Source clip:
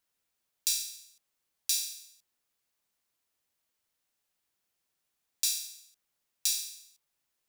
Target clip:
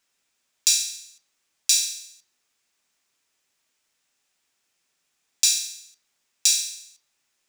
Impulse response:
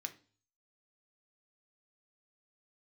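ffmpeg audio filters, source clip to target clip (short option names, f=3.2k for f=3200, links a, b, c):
-filter_complex "[0:a]asplit=2[a][b];[1:a]atrim=start_sample=2205,lowpass=8.3k,highshelf=f=5.3k:g=5.5[c];[b][c]afir=irnorm=-1:irlink=0,volume=5dB[d];[a][d]amix=inputs=2:normalize=0,volume=2.5dB"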